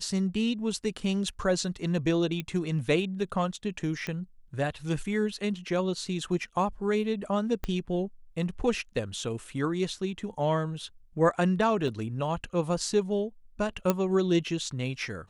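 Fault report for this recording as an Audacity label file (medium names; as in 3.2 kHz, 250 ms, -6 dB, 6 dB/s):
2.400000	2.400000	pop -19 dBFS
4.070000	4.070000	pop -20 dBFS
7.640000	7.640000	pop -18 dBFS
11.880000	11.880000	dropout 2.7 ms
13.900000	13.900000	pop -10 dBFS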